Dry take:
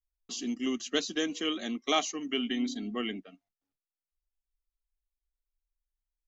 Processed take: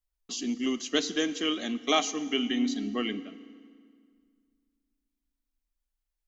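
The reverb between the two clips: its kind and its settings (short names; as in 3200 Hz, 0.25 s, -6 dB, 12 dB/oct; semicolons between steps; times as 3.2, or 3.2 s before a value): FDN reverb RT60 2 s, low-frequency decay 1.25×, high-frequency decay 0.85×, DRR 13.5 dB; gain +2.5 dB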